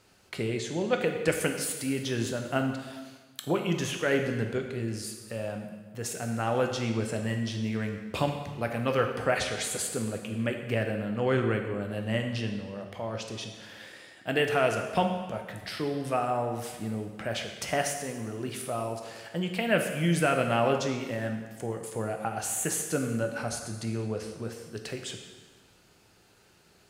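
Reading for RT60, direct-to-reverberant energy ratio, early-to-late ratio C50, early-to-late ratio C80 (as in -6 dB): 1.4 s, 3.5 dB, 6.0 dB, 7.5 dB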